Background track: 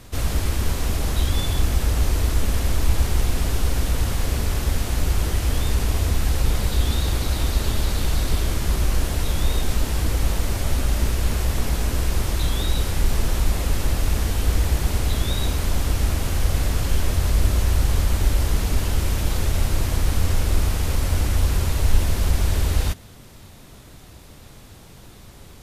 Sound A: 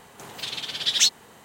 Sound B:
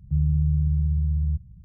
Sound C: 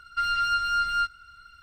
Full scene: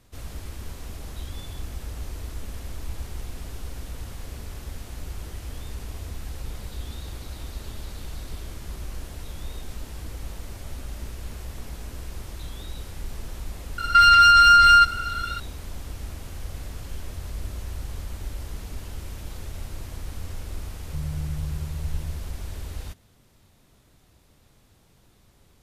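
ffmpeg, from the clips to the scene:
-filter_complex "[0:a]volume=-14.5dB[a];[3:a]alimiter=level_in=26.5dB:limit=-1dB:release=50:level=0:latency=1,atrim=end=1.62,asetpts=PTS-STARTPTS,volume=-6.5dB,afade=t=in:d=0.004:c=hsin,afade=t=out:st=1.616:d=0.004:c=hsin,adelay=13780[b];[2:a]atrim=end=1.64,asetpts=PTS-STARTPTS,volume=-9.5dB,afade=t=in:d=0.004:c=hsin,afade=t=out:st=1.636:d=0.004:c=hsin,adelay=20820[c];[a][b][c]amix=inputs=3:normalize=0"

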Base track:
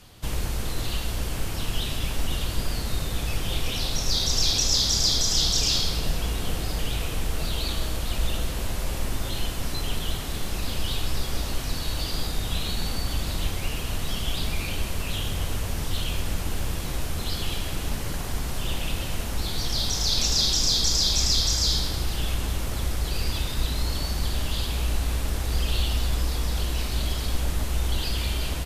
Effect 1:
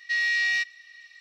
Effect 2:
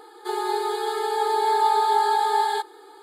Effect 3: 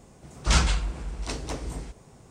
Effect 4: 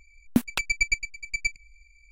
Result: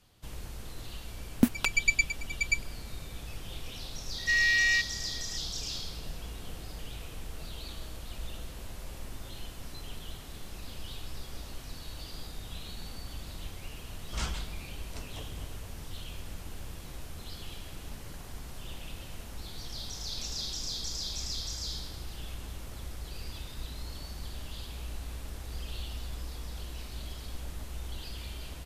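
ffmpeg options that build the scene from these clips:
-filter_complex "[0:a]volume=-14dB[a];[1:a]asplit=2[b][c];[c]adelay=230,highpass=300,lowpass=3.4k,asoftclip=type=hard:threshold=-25.5dB,volume=-22dB[d];[b][d]amix=inputs=2:normalize=0[e];[4:a]atrim=end=2.11,asetpts=PTS-STARTPTS,volume=-1dB,afade=t=in:d=0.004:c=hsin,afade=t=out:st=2.106:d=0.004:c=hsin,adelay=1070[f];[e]atrim=end=1.2,asetpts=PTS-STARTPTS,volume=-0.5dB,afade=t=in:d=0.004:c=hsin,afade=t=out:st=1.196:d=0.004:c=hsin,adelay=4180[g];[3:a]atrim=end=2.3,asetpts=PTS-STARTPTS,volume=-13.5dB,afade=t=in:d=0.004:c=hsin,afade=t=out:st=2.296:d=0.004:c=hsin,adelay=13670[h];[a][f][g][h]amix=inputs=4:normalize=0"

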